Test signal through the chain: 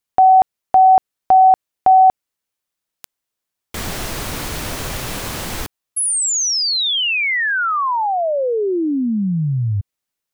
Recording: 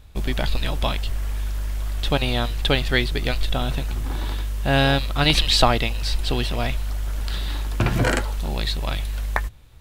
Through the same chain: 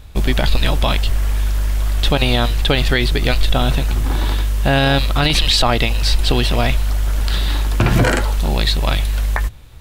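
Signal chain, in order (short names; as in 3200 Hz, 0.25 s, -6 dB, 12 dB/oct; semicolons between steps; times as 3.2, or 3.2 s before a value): limiter -13 dBFS; gain +8.5 dB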